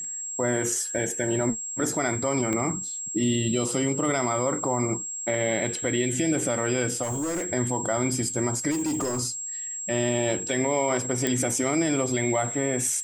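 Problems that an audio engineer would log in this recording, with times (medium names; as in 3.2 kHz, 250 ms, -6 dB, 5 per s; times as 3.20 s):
whine 7.6 kHz -31 dBFS
2.53 s: pop -15 dBFS
7.02–7.47 s: clipped -25 dBFS
8.70–9.20 s: clipped -23.5 dBFS
11.27 s: pop -10 dBFS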